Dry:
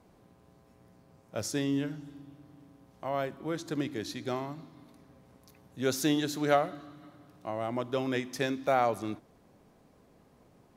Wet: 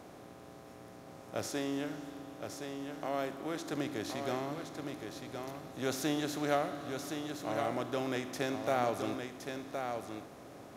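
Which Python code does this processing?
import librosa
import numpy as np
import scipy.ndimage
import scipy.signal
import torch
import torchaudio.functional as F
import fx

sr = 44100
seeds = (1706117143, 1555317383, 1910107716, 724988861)

y = fx.bin_compress(x, sr, power=0.6)
y = fx.peak_eq(y, sr, hz=110.0, db=-8.5, octaves=0.95, at=(1.47, 3.73))
y = y + 10.0 ** (-6.0 / 20.0) * np.pad(y, (int(1067 * sr / 1000.0), 0))[:len(y)]
y = y * 10.0 ** (-7.5 / 20.0)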